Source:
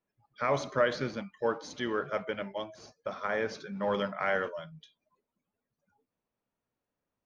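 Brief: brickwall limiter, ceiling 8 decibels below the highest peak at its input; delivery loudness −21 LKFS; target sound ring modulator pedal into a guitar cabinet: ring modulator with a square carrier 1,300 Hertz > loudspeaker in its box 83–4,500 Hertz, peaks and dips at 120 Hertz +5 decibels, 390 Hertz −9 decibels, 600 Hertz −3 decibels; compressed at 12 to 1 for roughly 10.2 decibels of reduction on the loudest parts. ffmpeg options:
ffmpeg -i in.wav -af "acompressor=threshold=-31dB:ratio=12,alimiter=level_in=3.5dB:limit=-24dB:level=0:latency=1,volume=-3.5dB,aeval=exprs='val(0)*sgn(sin(2*PI*1300*n/s))':channel_layout=same,highpass=83,equalizer=frequency=120:width_type=q:width=4:gain=5,equalizer=frequency=390:width_type=q:width=4:gain=-9,equalizer=frequency=600:width_type=q:width=4:gain=-3,lowpass=frequency=4500:width=0.5412,lowpass=frequency=4500:width=1.3066,volume=18.5dB" out.wav

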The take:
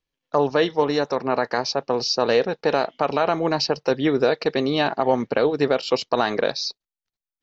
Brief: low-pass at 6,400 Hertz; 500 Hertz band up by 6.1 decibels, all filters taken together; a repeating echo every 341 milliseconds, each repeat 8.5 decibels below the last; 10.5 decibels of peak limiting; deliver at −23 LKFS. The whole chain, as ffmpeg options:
ffmpeg -i in.wav -af "lowpass=6400,equalizer=frequency=500:width_type=o:gain=7,alimiter=limit=-12.5dB:level=0:latency=1,aecho=1:1:341|682|1023|1364:0.376|0.143|0.0543|0.0206,volume=-0.5dB" out.wav

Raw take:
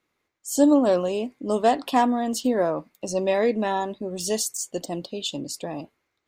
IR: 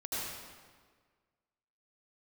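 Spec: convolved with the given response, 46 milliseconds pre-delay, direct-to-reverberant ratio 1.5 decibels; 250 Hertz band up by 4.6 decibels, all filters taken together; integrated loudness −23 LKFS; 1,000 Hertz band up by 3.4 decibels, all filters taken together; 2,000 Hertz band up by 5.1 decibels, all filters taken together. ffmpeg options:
-filter_complex "[0:a]equalizer=frequency=250:width_type=o:gain=5,equalizer=frequency=1000:width_type=o:gain=3.5,equalizer=frequency=2000:width_type=o:gain=5,asplit=2[link_01][link_02];[1:a]atrim=start_sample=2205,adelay=46[link_03];[link_02][link_03]afir=irnorm=-1:irlink=0,volume=-5.5dB[link_04];[link_01][link_04]amix=inputs=2:normalize=0,volume=-4.5dB"

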